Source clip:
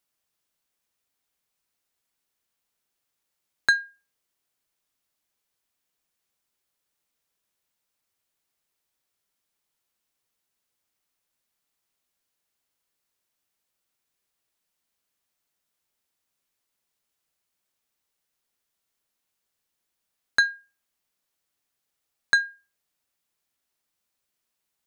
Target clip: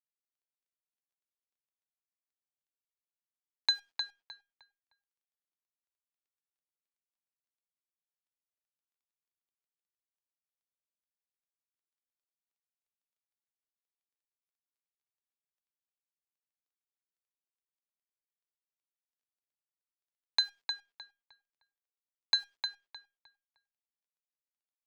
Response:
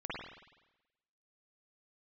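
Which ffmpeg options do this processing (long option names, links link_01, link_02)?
-filter_complex "[0:a]firequalizer=gain_entry='entry(110,0);entry(220,-24);entry(600,-13);entry(900,3);entry(1400,-28);entry(2300,1);entry(3400,6);entry(6700,-6);entry(13000,-5)':delay=0.05:min_phase=1,acrusher=bits=9:dc=4:mix=0:aa=0.000001,acrossover=split=230 6500:gain=0.251 1 0.158[link_01][link_02][link_03];[link_01][link_02][link_03]amix=inputs=3:normalize=0,asplit=2[link_04][link_05];[link_05]adelay=307,lowpass=frequency=3300:poles=1,volume=-4dB,asplit=2[link_06][link_07];[link_07]adelay=307,lowpass=frequency=3300:poles=1,volume=0.28,asplit=2[link_08][link_09];[link_09]adelay=307,lowpass=frequency=3300:poles=1,volume=0.28,asplit=2[link_10][link_11];[link_11]adelay=307,lowpass=frequency=3300:poles=1,volume=0.28[link_12];[link_06][link_08][link_10][link_12]amix=inputs=4:normalize=0[link_13];[link_04][link_13]amix=inputs=2:normalize=0"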